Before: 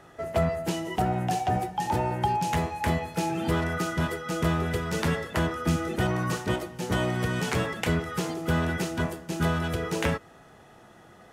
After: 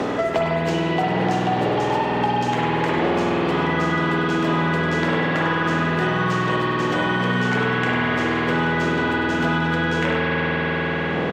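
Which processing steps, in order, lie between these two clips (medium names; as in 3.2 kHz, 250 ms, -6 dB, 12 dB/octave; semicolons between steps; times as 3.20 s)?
wind noise 410 Hz -33 dBFS; high-pass 300 Hz 12 dB/octave; on a send: delay 99 ms -10 dB; on the sum: spring tank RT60 3.9 s, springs 49 ms, chirp 25 ms, DRR -7.5 dB; in parallel at -10.5 dB: saturation -24 dBFS, distortion -9 dB; on the sum: boxcar filter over 4 samples; three bands compressed up and down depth 100%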